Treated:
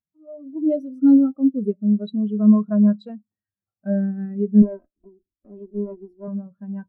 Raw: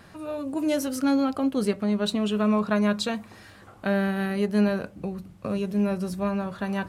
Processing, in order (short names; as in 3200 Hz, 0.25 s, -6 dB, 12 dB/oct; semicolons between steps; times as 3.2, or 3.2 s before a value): 4.62–6.28 minimum comb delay 3.1 ms; spectral expander 2.5:1; gain +7.5 dB